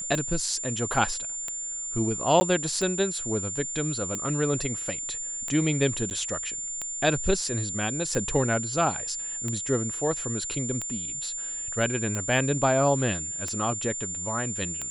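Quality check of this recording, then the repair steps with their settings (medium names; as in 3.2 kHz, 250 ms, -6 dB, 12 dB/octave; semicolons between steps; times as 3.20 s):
tick 45 rpm -17 dBFS
whine 7.2 kHz -31 dBFS
2.40–2.41 s: dropout 10 ms
6.10–6.11 s: dropout 9.5 ms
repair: de-click; band-stop 7.2 kHz, Q 30; interpolate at 2.40 s, 10 ms; interpolate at 6.10 s, 9.5 ms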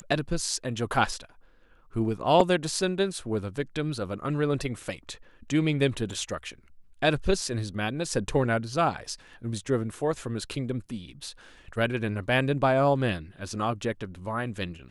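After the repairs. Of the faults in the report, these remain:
nothing left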